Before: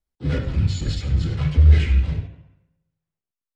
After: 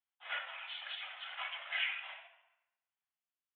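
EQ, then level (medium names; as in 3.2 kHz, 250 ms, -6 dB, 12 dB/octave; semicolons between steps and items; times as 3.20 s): steep high-pass 660 Hz 72 dB/octave; steep low-pass 3.4 kHz 96 dB/octave; treble shelf 2.3 kHz +8.5 dB; -5.0 dB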